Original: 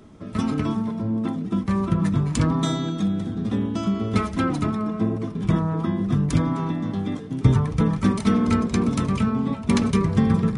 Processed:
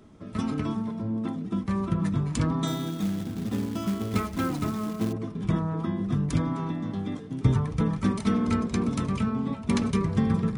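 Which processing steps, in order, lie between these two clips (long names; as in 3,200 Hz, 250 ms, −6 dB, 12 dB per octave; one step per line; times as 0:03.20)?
0:02.67–0:05.13: floating-point word with a short mantissa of 2 bits
level −5 dB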